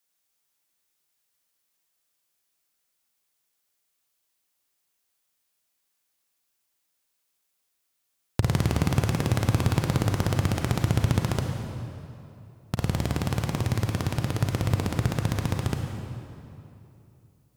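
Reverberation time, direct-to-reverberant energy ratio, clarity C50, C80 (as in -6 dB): 2.8 s, 3.0 dB, 3.5 dB, 4.5 dB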